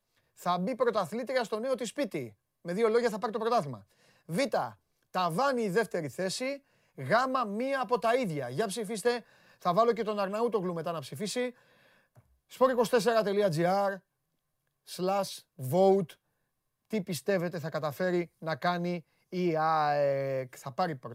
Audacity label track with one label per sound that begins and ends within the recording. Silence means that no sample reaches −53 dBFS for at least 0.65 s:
14.870000	16.140000	sound